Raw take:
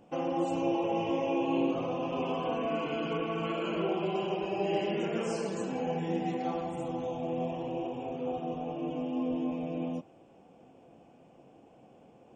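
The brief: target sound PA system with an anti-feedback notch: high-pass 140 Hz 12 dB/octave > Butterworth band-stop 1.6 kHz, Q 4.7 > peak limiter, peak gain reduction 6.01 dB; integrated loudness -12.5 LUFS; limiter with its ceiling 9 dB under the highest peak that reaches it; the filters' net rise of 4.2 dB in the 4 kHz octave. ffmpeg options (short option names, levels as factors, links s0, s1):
-af "equalizer=f=4000:t=o:g=7,alimiter=level_in=1.33:limit=0.0631:level=0:latency=1,volume=0.75,highpass=140,asuperstop=centerf=1600:order=8:qfactor=4.7,volume=21.1,alimiter=limit=0.631:level=0:latency=1"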